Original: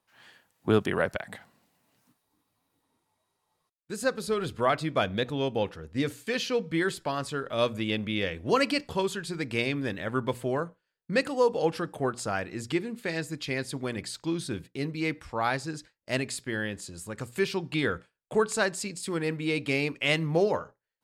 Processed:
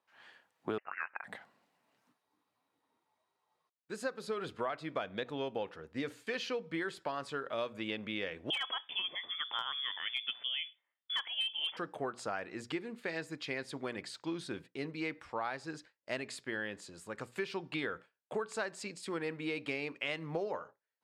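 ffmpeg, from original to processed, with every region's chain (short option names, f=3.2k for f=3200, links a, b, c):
-filter_complex "[0:a]asettb=1/sr,asplit=3[a][b][c];[a]atrim=end=0.784[d];[b]atrim=start=0.78:end=1.24,asetpts=PTS-STARTPTS,afade=t=in:d=0.004:c=qsin,afade=t=out:st=0.456:d=0.004:c=qsin,highpass=1.4k,lowpass=f=2.6k:t=q:w=0.5098,lowpass=f=2.6k:t=q:w=0.6013,lowpass=f=2.6k:t=q:w=0.9,lowpass=f=2.6k:t=q:w=2.563,afreqshift=-3100[e];[c]atrim=start=1.236[f];[d][e]acrossfade=d=0.004:c1=hsin:c2=qsin[g];[g][f]acrossfade=d=0.004:c1=qsin:c2=hsin,asettb=1/sr,asplit=3[h][i][j];[h]atrim=end=8.504[k];[i]atrim=start=8.5:end=11.77,asetpts=PTS-STARTPTS,afade=t=in:d=0.004:c=qsin,afade=t=out:st=3.266:d=0.004:c=qsin,lowpass=f=3.1k:t=q:w=0.5098,lowpass=f=3.1k:t=q:w=0.6013,lowpass=f=3.1k:t=q:w=0.9,lowpass=f=3.1k:t=q:w=2.563,afreqshift=-3600,aeval=exprs='0.168*(abs(mod(val(0)/0.168+3,4)-2)-1)':c=same[l];[j]atrim=start=11.766[m];[k][l]acrossfade=d=0.004:c1=hsin:c2=qsin[n];[n][m]acrossfade=d=0.004:c1=qsin:c2=hsin,highpass=f=560:p=1,aemphasis=mode=reproduction:type=75kf,acompressor=threshold=-33dB:ratio=6"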